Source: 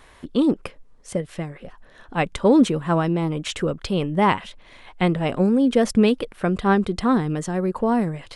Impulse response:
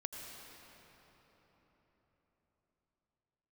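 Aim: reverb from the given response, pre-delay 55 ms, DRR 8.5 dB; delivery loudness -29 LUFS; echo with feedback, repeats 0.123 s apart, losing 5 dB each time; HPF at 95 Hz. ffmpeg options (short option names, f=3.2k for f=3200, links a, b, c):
-filter_complex "[0:a]highpass=95,aecho=1:1:123|246|369|492|615|738|861:0.562|0.315|0.176|0.0988|0.0553|0.031|0.0173,asplit=2[a][b];[1:a]atrim=start_sample=2205,adelay=55[c];[b][c]afir=irnorm=-1:irlink=0,volume=-7.5dB[d];[a][d]amix=inputs=2:normalize=0,volume=-9dB"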